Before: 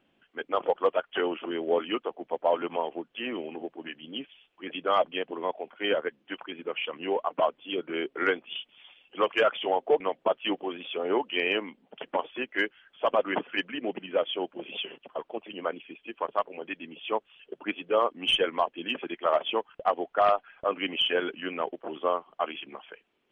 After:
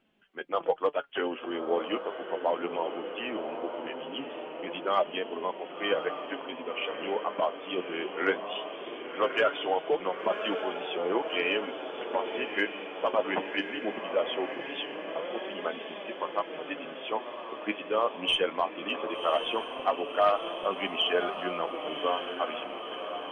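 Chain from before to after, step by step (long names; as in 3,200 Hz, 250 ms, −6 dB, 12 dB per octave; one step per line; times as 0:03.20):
on a send: feedback delay with all-pass diffusion 1,111 ms, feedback 65%, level −8 dB
on the sum: flanger 0.19 Hz, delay 4.4 ms, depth 6.8 ms, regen +53%
level +2 dB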